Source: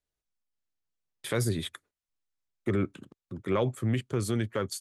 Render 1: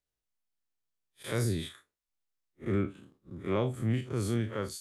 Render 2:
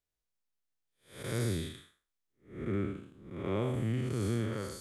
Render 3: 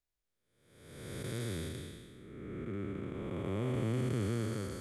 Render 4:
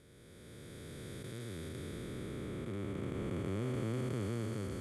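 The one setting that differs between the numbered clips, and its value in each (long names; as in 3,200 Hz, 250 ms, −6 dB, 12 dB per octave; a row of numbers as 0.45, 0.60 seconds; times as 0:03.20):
spectrum smeared in time, width: 90, 250, 675, 1,730 milliseconds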